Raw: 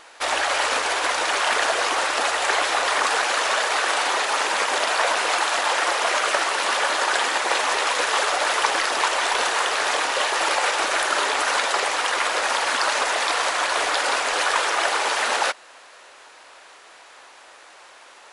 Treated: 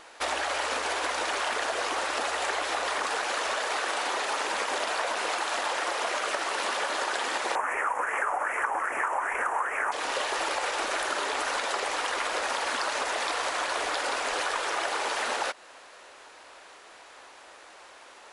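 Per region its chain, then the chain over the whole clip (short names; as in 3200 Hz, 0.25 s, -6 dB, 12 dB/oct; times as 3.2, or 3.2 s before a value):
7.55–9.92 Butterworth band-stop 4100 Hz, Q 0.68 + LFO bell 2.5 Hz 850–2300 Hz +14 dB
whole clip: low shelf 480 Hz +6.5 dB; compressor, threshold -22 dBFS; gain -4 dB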